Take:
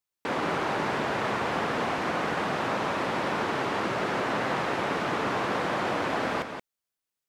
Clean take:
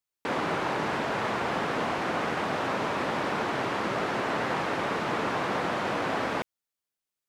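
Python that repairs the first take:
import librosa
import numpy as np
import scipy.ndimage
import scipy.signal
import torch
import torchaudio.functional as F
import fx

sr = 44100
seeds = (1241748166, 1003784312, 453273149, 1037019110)

y = fx.fix_declip(x, sr, threshold_db=-17.5)
y = fx.fix_echo_inverse(y, sr, delay_ms=176, level_db=-7.5)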